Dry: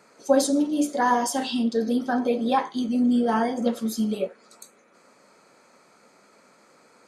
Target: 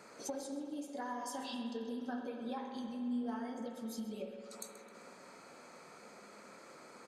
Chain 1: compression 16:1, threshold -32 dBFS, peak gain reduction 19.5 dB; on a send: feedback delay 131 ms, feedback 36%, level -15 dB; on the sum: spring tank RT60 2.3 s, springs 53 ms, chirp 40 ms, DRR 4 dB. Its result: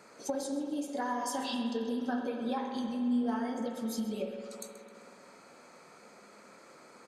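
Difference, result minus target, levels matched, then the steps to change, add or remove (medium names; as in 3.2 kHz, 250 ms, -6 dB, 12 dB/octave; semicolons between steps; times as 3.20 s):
compression: peak gain reduction -7.5 dB
change: compression 16:1, threshold -40 dBFS, peak gain reduction 27 dB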